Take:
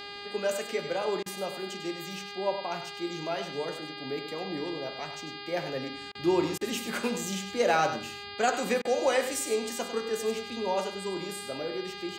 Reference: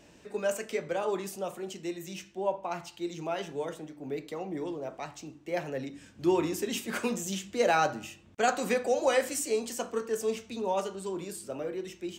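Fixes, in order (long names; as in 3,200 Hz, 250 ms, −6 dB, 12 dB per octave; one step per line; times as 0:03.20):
hum removal 405.4 Hz, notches 12
repair the gap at 0:01.23/0:06.12/0:06.58/0:08.82, 29 ms
echo removal 99 ms −10 dB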